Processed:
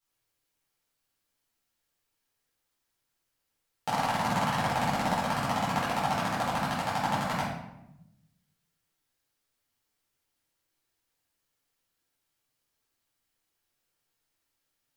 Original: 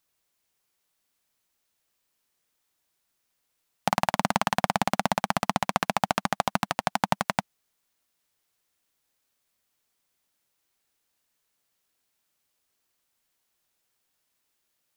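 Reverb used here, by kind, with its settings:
rectangular room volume 280 cubic metres, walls mixed, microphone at 4.2 metres
level −14 dB

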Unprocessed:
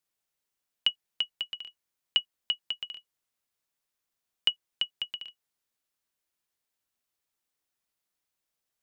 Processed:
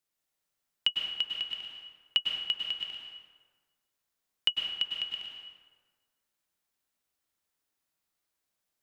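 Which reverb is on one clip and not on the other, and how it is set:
dense smooth reverb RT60 1.5 s, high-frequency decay 0.6×, pre-delay 90 ms, DRR −0.5 dB
level −1.5 dB

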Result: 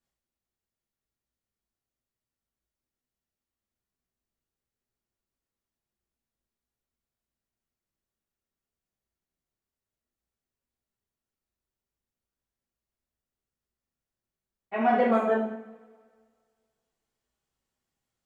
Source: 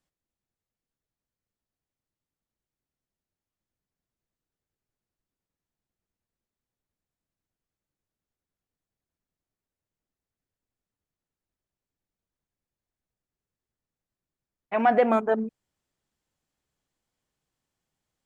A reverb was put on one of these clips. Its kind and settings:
coupled-rooms reverb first 0.68 s, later 1.9 s, from −20 dB, DRR −7 dB
level −9 dB

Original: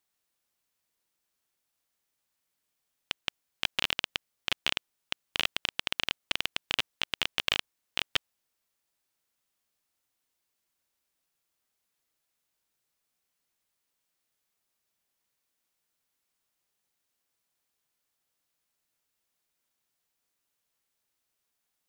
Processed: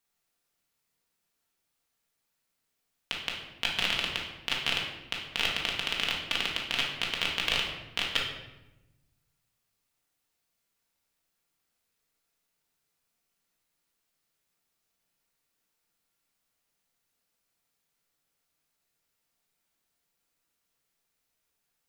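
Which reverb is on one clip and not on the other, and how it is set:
rectangular room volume 430 cubic metres, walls mixed, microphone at 1.7 metres
level −2 dB

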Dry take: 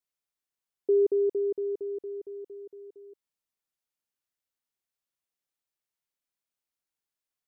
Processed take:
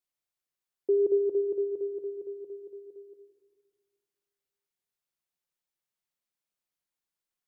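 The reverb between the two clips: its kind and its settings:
rectangular room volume 1,900 cubic metres, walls mixed, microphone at 0.93 metres
level −1.5 dB

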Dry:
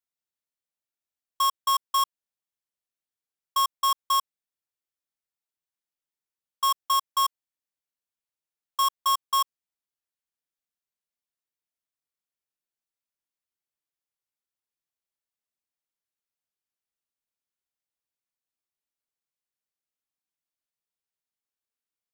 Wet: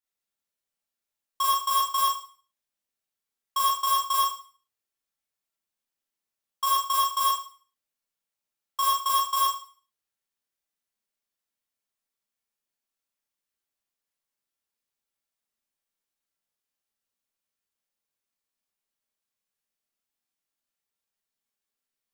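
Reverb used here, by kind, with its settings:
four-comb reverb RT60 0.42 s, combs from 28 ms, DRR −5.5 dB
level −2.5 dB

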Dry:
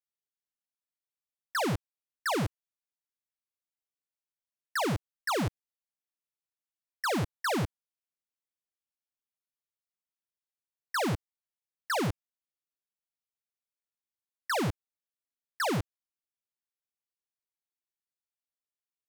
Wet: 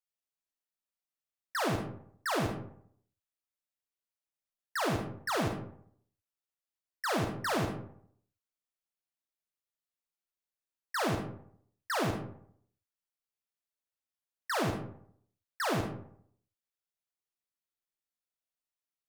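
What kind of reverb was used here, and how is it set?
comb and all-pass reverb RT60 0.64 s, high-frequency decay 0.5×, pre-delay 5 ms, DRR 1.5 dB
level −3.5 dB

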